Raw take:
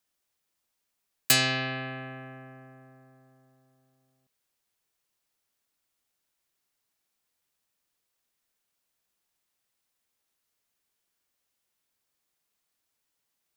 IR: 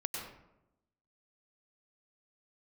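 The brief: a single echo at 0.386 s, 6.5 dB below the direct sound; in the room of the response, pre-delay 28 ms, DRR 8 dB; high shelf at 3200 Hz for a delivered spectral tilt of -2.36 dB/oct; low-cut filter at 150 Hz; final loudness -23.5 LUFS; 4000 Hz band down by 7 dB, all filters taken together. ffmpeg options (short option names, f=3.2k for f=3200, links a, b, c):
-filter_complex "[0:a]highpass=150,highshelf=f=3.2k:g=-3.5,equalizer=f=4k:t=o:g=-6.5,aecho=1:1:386:0.473,asplit=2[a][b];[1:a]atrim=start_sample=2205,adelay=28[c];[b][c]afir=irnorm=-1:irlink=0,volume=-10dB[d];[a][d]amix=inputs=2:normalize=0,volume=6.5dB"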